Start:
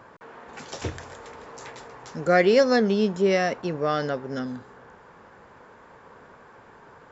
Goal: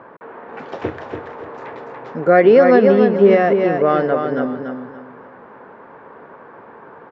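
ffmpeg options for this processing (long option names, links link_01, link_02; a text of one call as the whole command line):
ffmpeg -i in.wav -filter_complex "[0:a]highpass=340,lowpass=2600,aemphasis=mode=reproduction:type=riaa,asplit=2[link_01][link_02];[link_02]aecho=0:1:288|576|864|1152:0.501|0.145|0.0421|0.0122[link_03];[link_01][link_03]amix=inputs=2:normalize=0,alimiter=level_in=9dB:limit=-1dB:release=50:level=0:latency=1,volume=-1dB" out.wav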